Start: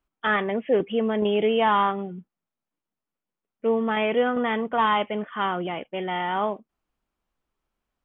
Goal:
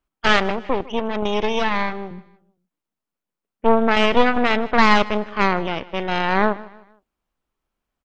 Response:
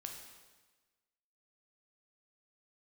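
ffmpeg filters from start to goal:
-filter_complex "[0:a]asettb=1/sr,asplit=3[link_01][link_02][link_03];[link_01]atrim=end=0.504[link_04];[link_02]atrim=start=0.5:end=2.11,asetpts=PTS-STARTPTS,afade=type=in:duration=0.004:curve=qsin,afade=type=out:start_time=1.606:duration=0.004:curve=qsin,acrossover=split=400|1100[link_05][link_06][link_07];[link_05]acompressor=threshold=-34dB:ratio=4[link_08];[link_06]acompressor=threshold=-27dB:ratio=4[link_09];[link_07]acompressor=threshold=-30dB:ratio=4[link_10];[link_08][link_09][link_10]amix=inputs=3:normalize=0[link_11];[link_03]atrim=start=2.106[link_12];[link_04][link_11]acrossfade=duration=0.004:curve1=hsin:curve2=qsin[link_13];[link_13][link_12]acrossfade=duration=0.004:curve1=qsin:curve2=hsin,aeval=exprs='0.299*(cos(1*acos(clip(val(0)/0.299,-1,1)))-cos(1*PI/2))+0.0422*(cos(3*acos(clip(val(0)/0.299,-1,1)))-cos(3*PI/2))+0.106*(cos(4*acos(clip(val(0)/0.299,-1,1)))-cos(4*PI/2))':channel_layout=same,aecho=1:1:155|310|465:0.106|0.0392|0.0145,volume=5.5dB"

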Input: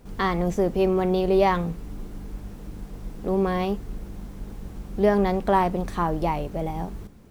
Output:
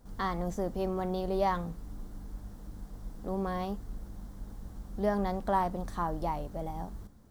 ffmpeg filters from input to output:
ffmpeg -i in.wav -af "equalizer=frequency=160:width_type=o:width=0.67:gain=-4,equalizer=frequency=400:width_type=o:width=0.67:gain=-7,equalizer=frequency=2500:width_type=o:width=0.67:gain=-11,volume=-6dB" out.wav

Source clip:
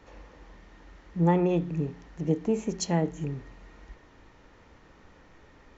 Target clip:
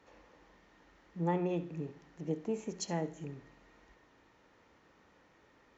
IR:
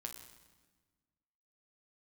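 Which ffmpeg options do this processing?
-filter_complex "[0:a]highpass=frequency=200:poles=1,asplit=2[link_01][link_02];[1:a]atrim=start_sample=2205,asetrate=83790,aresample=44100,adelay=68[link_03];[link_02][link_03]afir=irnorm=-1:irlink=0,volume=-7dB[link_04];[link_01][link_04]amix=inputs=2:normalize=0,volume=-7.5dB"

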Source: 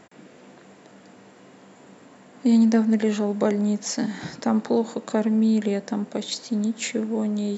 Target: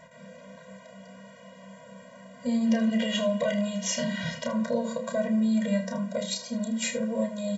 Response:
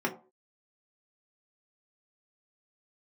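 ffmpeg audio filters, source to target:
-filter_complex "[0:a]asettb=1/sr,asplit=3[link_01][link_02][link_03];[link_01]atrim=end=2.654[link_04];[link_02]atrim=start=2.65:end=4.5,asetpts=PTS-STARTPTS,afade=type=in:duration=0.004:curve=qsin,afade=type=out:start_time=1.846:duration=0.004:curve=qsin,equalizer=frequency=3000:width=2.7:gain=14.5[link_05];[link_03]atrim=start=4.496[link_06];[link_04][link_05]acrossfade=duration=0.004:curve1=hsin:curve2=qsin[link_07];[link_07][link_06]acrossfade=duration=0.004:curve1=qsin:curve2=hsin,alimiter=limit=-15.5dB:level=0:latency=1,aecho=1:1:31|78:0.473|0.211,asplit=2[link_08][link_09];[1:a]atrim=start_sample=2205[link_10];[link_09][link_10]afir=irnorm=-1:irlink=0,volume=-12.5dB[link_11];[link_08][link_11]amix=inputs=2:normalize=0,afftfilt=real='re*eq(mod(floor(b*sr/1024/230),2),0)':imag='im*eq(mod(floor(b*sr/1024/230),2),0)':win_size=1024:overlap=0.75"

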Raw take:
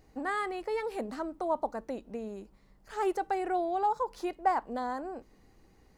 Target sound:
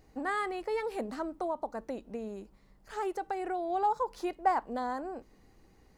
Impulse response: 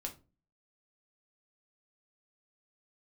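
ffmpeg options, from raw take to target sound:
-filter_complex "[0:a]asettb=1/sr,asplit=3[link_01][link_02][link_03];[link_01]atrim=end=1.454[link_04];[link_02]atrim=start=1.45:end=3.7,asetpts=PTS-STARTPTS,afade=type=in:duration=0.004:curve=qsin,afade=type=out:start_time=2.246:duration=0.004:curve=qsin,acompressor=threshold=-31dB:ratio=4[link_05];[link_03]atrim=start=3.696[link_06];[link_04][link_05]acrossfade=duration=0.004:curve1=hsin:curve2=qsin[link_07];[link_07][link_06]acrossfade=duration=0.004:curve1=qsin:curve2=hsin"

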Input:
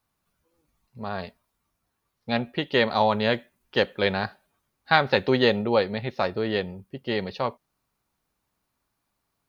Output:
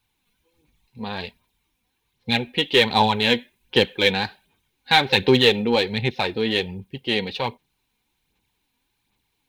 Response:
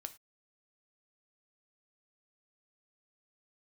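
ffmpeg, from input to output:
-filter_complex "[0:a]superequalizer=8b=0.355:10b=0.398:12b=2.24:13b=2.51,aphaser=in_gain=1:out_gain=1:delay=4.2:decay=0.45:speed=1.3:type=sinusoidal,asplit=2[link_01][link_02];[link_02]asoftclip=type=hard:threshold=-17dB,volume=-5.5dB[link_03];[link_01][link_03]amix=inputs=2:normalize=0,volume=-1dB"

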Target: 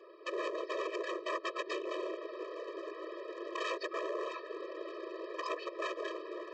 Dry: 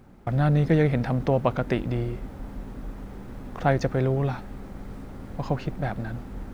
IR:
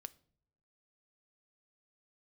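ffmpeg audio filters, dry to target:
-filter_complex "[0:a]aresample=11025,aresample=44100,asplit=2[link_01][link_02];[link_02]aeval=exprs='sgn(val(0))*max(abs(val(0))-0.0188,0)':channel_layout=same,volume=-6dB[link_03];[link_01][link_03]amix=inputs=2:normalize=0,afftfilt=real='hypot(re,im)*cos(2*PI*random(0))':imag='hypot(re,im)*sin(2*PI*random(1))':win_size=512:overlap=0.75,acompressor=threshold=-34dB:ratio=10,aresample=16000,aeval=exprs='0.0119*(abs(mod(val(0)/0.0119+3,4)-2)-1)':channel_layout=same,aresample=44100,lowshelf=frequency=120:gain=-11.5,afftfilt=real='re*eq(mod(floor(b*sr/1024/330),2),1)':imag='im*eq(mod(floor(b*sr/1024/330),2),1)':win_size=1024:overlap=0.75,volume=12dB"

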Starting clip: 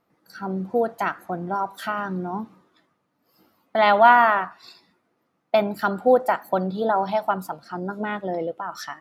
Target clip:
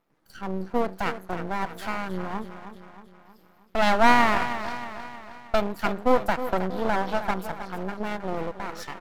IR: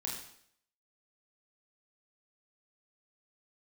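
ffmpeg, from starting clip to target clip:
-af "aecho=1:1:315|630|945|1260|1575|1890:0.282|0.147|0.0762|0.0396|0.0206|0.0107,aeval=exprs='max(val(0),0)':channel_layout=same"

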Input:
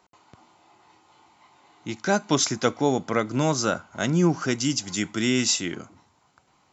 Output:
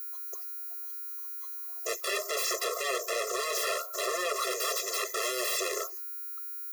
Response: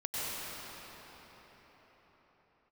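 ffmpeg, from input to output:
-filter_complex "[0:a]afftdn=noise_reduction=28:noise_floor=-46,aeval=exprs='val(0)+0.0126*sin(2*PI*6500*n/s)':channel_layout=same,adynamicequalizer=threshold=0.00708:dfrequency=370:dqfactor=7.8:tfrequency=370:tqfactor=7.8:attack=5:release=100:ratio=0.375:range=3:mode=cutabove:tftype=bell,asplit=2[link_01][link_02];[link_02]acompressor=mode=upward:threshold=-26dB:ratio=2.5,volume=1dB[link_03];[link_01][link_03]amix=inputs=2:normalize=0,alimiter=limit=-9.5dB:level=0:latency=1:release=59,aeval=exprs='0.335*sin(PI/2*6.31*val(0)/0.335)':channel_layout=same,highshelf=frequency=4000:gain=-9,asoftclip=type=tanh:threshold=-24dB,afftfilt=real='re*eq(mod(floor(b*sr/1024/350),2),1)':imag='im*eq(mod(floor(b*sr/1024/350),2),1)':win_size=1024:overlap=0.75,volume=-1.5dB"

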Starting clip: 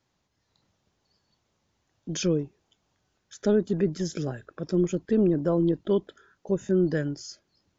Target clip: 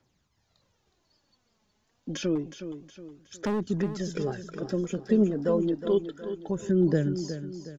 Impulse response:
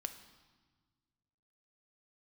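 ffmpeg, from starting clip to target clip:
-filter_complex "[0:a]acrossover=split=92|3300[link_01][link_02][link_03];[link_01]acompressor=threshold=-54dB:ratio=4[link_04];[link_02]acompressor=threshold=-23dB:ratio=4[link_05];[link_03]acompressor=threshold=-46dB:ratio=4[link_06];[link_04][link_05][link_06]amix=inputs=3:normalize=0,aphaser=in_gain=1:out_gain=1:delay=4.9:decay=0.53:speed=0.29:type=triangular,asettb=1/sr,asplit=3[link_07][link_08][link_09];[link_07]atrim=end=2.354[link_10];[link_08]atrim=start=2.35:end=3.62,asetpts=PTS-STARTPTS,afade=type=in:duration=0.004:curve=qsin,afade=type=out:start_time=1.266:duration=0.004:curve=qsin,asoftclip=type=hard:threshold=-24dB[link_11];[link_09]atrim=start=3.616[link_12];[link_10][link_11]acrossfade=duration=0.004:curve1=hsin:curve2=qsin[link_13];[link_13][link_12]acrossfade=duration=0.004:curve1=qsin:curve2=hsin,asplit=2[link_14][link_15];[link_15]aecho=0:1:366|732|1098|1464|1830:0.299|0.128|0.0552|0.0237|0.0102[link_16];[link_14][link_16]amix=inputs=2:normalize=0"

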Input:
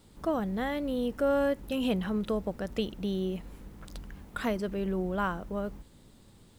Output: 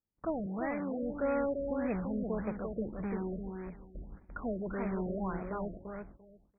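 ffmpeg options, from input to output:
ffmpeg -i in.wav -filter_complex "[0:a]agate=range=-35dB:threshold=-43dB:ratio=16:detection=peak,asplit=2[link_01][link_02];[link_02]aeval=exprs='(mod(28.2*val(0)+1,2)-1)/28.2':channel_layout=same,volume=-6dB[link_03];[link_01][link_03]amix=inputs=2:normalize=0,asettb=1/sr,asplit=3[link_04][link_05][link_06];[link_04]atrim=end=0.464[link_07];[link_05]atrim=start=0.46:end=1.03,asetpts=PTS-STARTPTS,afade=type=in:duration=0.004:curve=qsin,afade=type=out:start_time=0.566:duration=0.004:curve=qsin,highpass=140,lowpass=5500[link_08];[link_06]atrim=start=1.026[link_09];[link_07][link_08]acrossfade=duration=0.004:curve1=hsin:curve2=qsin[link_10];[link_10][link_09]acrossfade=duration=0.004:curve1=qsin:curve2=hsin,aecho=1:1:343|686|1029:0.562|0.101|0.0182,afftfilt=real='re*lt(b*sr/1024,680*pow(2600/680,0.5+0.5*sin(2*PI*1.7*pts/sr)))':imag='im*lt(b*sr/1024,680*pow(2600/680,0.5+0.5*sin(2*PI*1.7*pts/sr)))':win_size=1024:overlap=0.75,volume=-5.5dB" out.wav

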